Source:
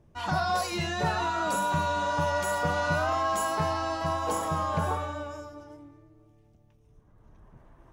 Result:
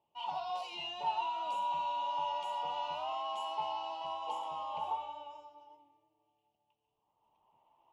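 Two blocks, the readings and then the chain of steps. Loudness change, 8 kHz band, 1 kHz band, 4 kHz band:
−9.0 dB, below −20 dB, −6.5 dB, −5.0 dB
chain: pair of resonant band-passes 1,600 Hz, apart 1.7 octaves

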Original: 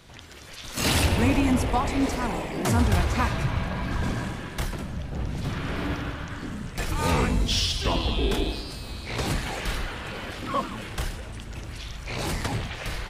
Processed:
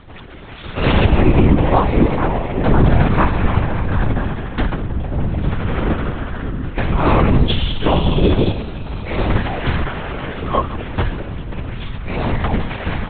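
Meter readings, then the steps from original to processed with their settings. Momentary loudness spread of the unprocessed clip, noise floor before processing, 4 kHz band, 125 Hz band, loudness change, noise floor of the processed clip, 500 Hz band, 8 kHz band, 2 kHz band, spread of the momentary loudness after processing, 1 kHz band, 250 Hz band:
13 LU, −40 dBFS, +1.5 dB, +10.5 dB, +8.5 dB, −32 dBFS, +11.0 dB, below −40 dB, +6.0 dB, 14 LU, +9.0 dB, +9.5 dB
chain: high-shelf EQ 2,000 Hz −11 dB
linear-prediction vocoder at 8 kHz whisper
boost into a limiter +12.5 dB
level −1 dB

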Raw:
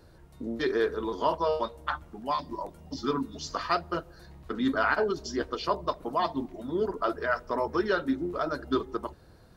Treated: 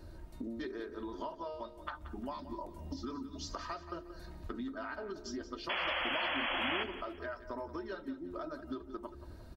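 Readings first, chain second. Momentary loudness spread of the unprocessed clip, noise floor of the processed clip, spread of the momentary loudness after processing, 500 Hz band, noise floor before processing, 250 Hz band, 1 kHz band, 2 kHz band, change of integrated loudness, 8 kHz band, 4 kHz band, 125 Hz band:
9 LU, −52 dBFS, 13 LU, −13.0 dB, −55 dBFS, −10.0 dB, −11.0 dB, −5.5 dB, −9.5 dB, can't be measured, −0.5 dB, −8.0 dB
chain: low-shelf EQ 280 Hz +7.5 dB
comb filter 3.2 ms, depth 51%
hum removal 69.99 Hz, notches 7
downward compressor 12 to 1, threshold −37 dBFS, peak gain reduction 20.5 dB
sound drawn into the spectrogram noise, 0:05.69–0:06.84, 490–3,400 Hz −34 dBFS
repeating echo 179 ms, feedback 32%, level −13 dB
level −1.5 dB

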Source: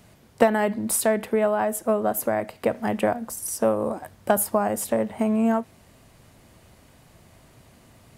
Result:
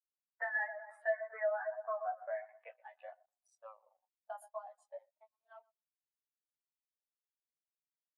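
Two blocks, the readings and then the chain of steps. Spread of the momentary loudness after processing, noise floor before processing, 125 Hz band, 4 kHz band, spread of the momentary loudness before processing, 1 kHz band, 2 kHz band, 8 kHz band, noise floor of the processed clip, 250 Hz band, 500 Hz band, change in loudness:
19 LU, −55 dBFS, below −40 dB, below −35 dB, 6 LU, −17.5 dB, −8.0 dB, below −40 dB, below −85 dBFS, below −40 dB, −17.5 dB, −15.5 dB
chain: adaptive Wiener filter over 15 samples
high-shelf EQ 2,900 Hz −7 dB
band-pass filter sweep 1,800 Hz → 4,200 Hz, 0:02.13–0:03.09
in parallel at −9 dB: soft clipping −30.5 dBFS, distortion −10 dB
on the sum: double-tracking delay 35 ms −10.5 dB
on a send: feedback echo with a low-pass in the loop 120 ms, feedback 62%, low-pass 2,600 Hz, level −9.5 dB
on the sum: multi-voice chorus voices 2, 0.56 Hz, delay 12 ms, depth 3.8 ms
high-pass filter 610 Hz 24 dB per octave
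leveller curve on the samples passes 3
downward compressor 5 to 1, threshold −32 dBFS, peak gain reduction 7.5 dB
every bin expanded away from the loudest bin 2.5 to 1

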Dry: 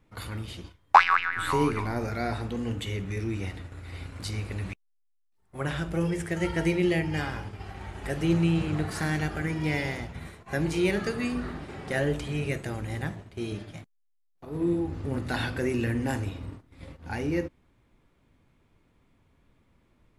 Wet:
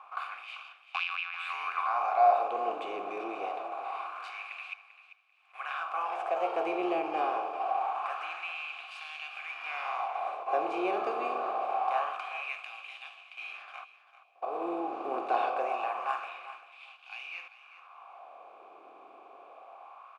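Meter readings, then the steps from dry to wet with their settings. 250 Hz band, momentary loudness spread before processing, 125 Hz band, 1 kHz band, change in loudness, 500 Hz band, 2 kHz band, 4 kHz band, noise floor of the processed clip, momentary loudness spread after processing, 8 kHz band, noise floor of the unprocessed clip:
−14.0 dB, 16 LU, below −40 dB, +1.0 dB, −4.0 dB, −2.0 dB, −6.0 dB, −5.5 dB, −59 dBFS, 20 LU, below −15 dB, −69 dBFS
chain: compressor on every frequency bin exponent 0.6
auto-filter high-pass sine 0.25 Hz 350–2,900 Hz
formant filter a
on a send: repeating echo 392 ms, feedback 21%, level −14 dB
on the sum: level +3 dB

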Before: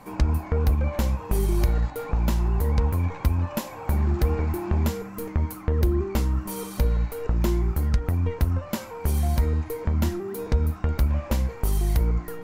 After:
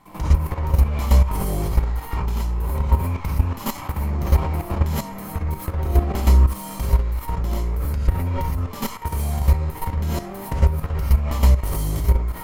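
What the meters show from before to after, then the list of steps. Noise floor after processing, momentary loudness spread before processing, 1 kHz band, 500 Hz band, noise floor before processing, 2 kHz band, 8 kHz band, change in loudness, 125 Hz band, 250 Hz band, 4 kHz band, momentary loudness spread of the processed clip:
−34 dBFS, 5 LU, +5.5 dB, −1.5 dB, −39 dBFS, +2.0 dB, +3.0 dB, +3.0 dB, +3.5 dB, 0.0 dB, +3.0 dB, 9 LU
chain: lower of the sound and its delayed copy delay 0.95 ms
reverb whose tail is shaped and stops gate 140 ms rising, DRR −7.5 dB
output level in coarse steps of 11 dB

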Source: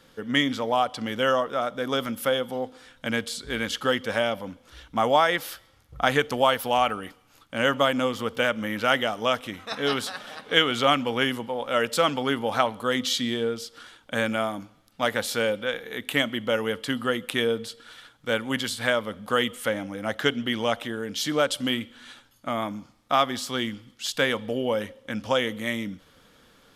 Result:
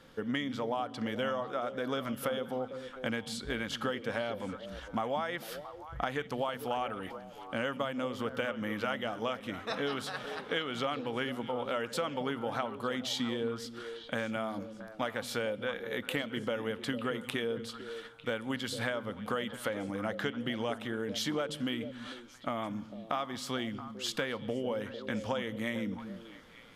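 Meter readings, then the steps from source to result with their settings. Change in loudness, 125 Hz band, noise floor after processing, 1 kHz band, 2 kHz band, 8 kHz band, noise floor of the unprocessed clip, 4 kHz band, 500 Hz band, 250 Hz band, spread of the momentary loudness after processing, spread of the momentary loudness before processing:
−10.0 dB, −6.0 dB, −50 dBFS, −10.5 dB, −10.5 dB, −10.0 dB, −59 dBFS, −11.5 dB, −9.0 dB, −6.5 dB, 7 LU, 12 LU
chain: high-shelf EQ 3,600 Hz −7.5 dB
downward compressor 6 to 1, threshold −31 dBFS, peak gain reduction 15 dB
on a send: echo through a band-pass that steps 225 ms, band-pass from 160 Hz, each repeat 1.4 octaves, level −5 dB

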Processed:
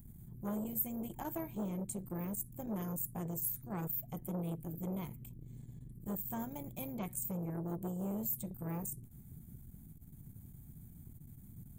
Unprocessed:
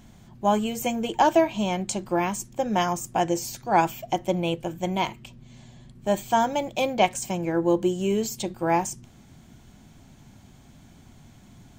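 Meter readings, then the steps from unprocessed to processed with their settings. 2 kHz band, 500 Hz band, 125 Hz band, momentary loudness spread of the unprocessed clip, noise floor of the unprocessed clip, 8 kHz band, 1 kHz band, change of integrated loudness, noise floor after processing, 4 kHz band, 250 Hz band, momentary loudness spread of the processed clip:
−25.0 dB, −21.0 dB, −7.5 dB, 7 LU, −52 dBFS, −12.0 dB, −25.0 dB, −14.5 dB, −55 dBFS, −29.0 dB, −12.5 dB, 17 LU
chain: drawn EQ curve 160 Hz 0 dB, 470 Hz −21 dB, 2,600 Hz −19 dB, 5,600 Hz −25 dB, 11,000 Hz +10 dB
downward compressor 1.5 to 1, threshold −41 dBFS, peak gain reduction 7 dB
parametric band 2,800 Hz −10 dB 0.22 octaves
saturating transformer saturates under 980 Hz
level +1 dB

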